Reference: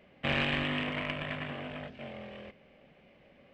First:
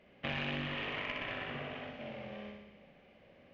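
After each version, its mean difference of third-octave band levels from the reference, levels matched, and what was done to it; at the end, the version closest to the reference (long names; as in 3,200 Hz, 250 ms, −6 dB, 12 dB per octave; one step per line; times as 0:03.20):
4.0 dB: linear-phase brick-wall low-pass 7,000 Hz
on a send: flutter between parallel walls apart 10.7 metres, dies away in 1 s
on the sum: downward compressor, threshold −30 dBFS, peak gain reduction 7 dB
mains-hum notches 50/100/150/200/250 Hz
level −3.5 dB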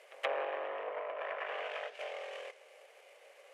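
13.5 dB: variable-slope delta modulation 64 kbit/s
elliptic high-pass filter 450 Hz, stop band 50 dB
treble cut that deepens with the level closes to 800 Hz, closed at −33.5 dBFS
backwards echo 127 ms −21.5 dB
level +4 dB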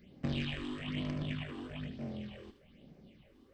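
5.5 dB: flat-topped bell 1,100 Hz −10.5 dB 2.7 octaves
downward compressor 4 to 1, threshold −38 dBFS, peak gain reduction 7.5 dB
all-pass phaser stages 6, 1.1 Hz, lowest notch 150–3,200 Hz
on a send: delay with a high-pass on its return 77 ms, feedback 35%, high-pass 1,400 Hz, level −8.5 dB
on the sum: level +5.5 dB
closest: first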